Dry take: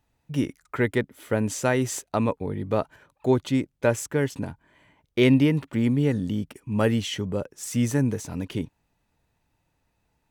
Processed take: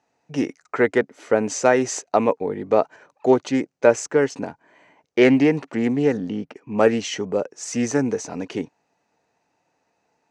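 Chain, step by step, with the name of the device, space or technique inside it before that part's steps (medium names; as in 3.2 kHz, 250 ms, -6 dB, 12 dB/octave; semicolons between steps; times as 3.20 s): 6.17–6.78 s: Bessel low-pass 3.5 kHz, order 2; full-range speaker at full volume (loudspeaker Doppler distortion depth 0.14 ms; cabinet simulation 260–7000 Hz, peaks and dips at 460 Hz +4 dB, 730 Hz +6 dB, 3.4 kHz -8 dB, 6.2 kHz +4 dB); trim +5 dB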